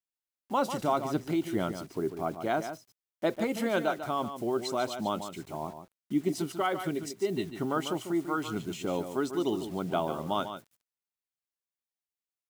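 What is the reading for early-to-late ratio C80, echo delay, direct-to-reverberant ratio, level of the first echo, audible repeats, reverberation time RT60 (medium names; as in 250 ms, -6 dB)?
no reverb, 145 ms, no reverb, -9.5 dB, 1, no reverb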